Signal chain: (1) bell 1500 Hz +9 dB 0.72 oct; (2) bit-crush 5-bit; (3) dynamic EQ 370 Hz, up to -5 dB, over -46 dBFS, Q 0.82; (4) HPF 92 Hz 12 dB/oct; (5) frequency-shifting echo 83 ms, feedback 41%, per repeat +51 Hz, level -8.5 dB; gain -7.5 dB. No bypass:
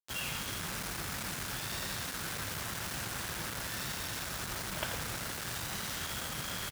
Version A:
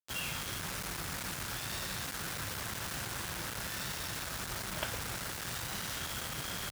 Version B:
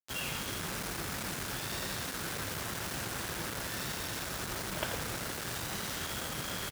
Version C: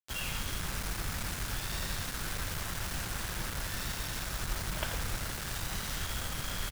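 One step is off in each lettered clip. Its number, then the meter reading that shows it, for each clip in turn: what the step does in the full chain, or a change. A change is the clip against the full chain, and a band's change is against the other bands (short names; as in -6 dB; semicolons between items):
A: 5, echo-to-direct -7.5 dB to none; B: 3, 500 Hz band +3.0 dB; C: 4, 125 Hz band +4.5 dB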